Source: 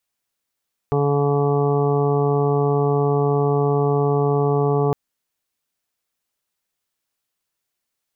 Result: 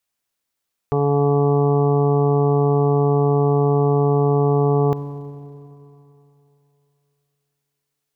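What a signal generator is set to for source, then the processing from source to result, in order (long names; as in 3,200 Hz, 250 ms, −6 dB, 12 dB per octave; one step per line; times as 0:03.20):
steady harmonic partials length 4.01 s, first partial 143 Hz, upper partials −8/0.5/−16.5/−7.5/−10/−17/−11 dB, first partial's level −19.5 dB
four-comb reverb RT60 3 s, combs from 31 ms, DRR 12.5 dB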